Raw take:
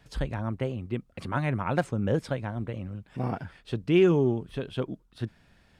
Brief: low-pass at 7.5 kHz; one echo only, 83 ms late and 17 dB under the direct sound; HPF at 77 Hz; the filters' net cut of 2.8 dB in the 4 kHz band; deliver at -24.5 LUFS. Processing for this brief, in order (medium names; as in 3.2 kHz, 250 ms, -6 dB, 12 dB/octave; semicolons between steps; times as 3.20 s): high-pass 77 Hz; low-pass 7.5 kHz; peaking EQ 4 kHz -4 dB; delay 83 ms -17 dB; trim +5 dB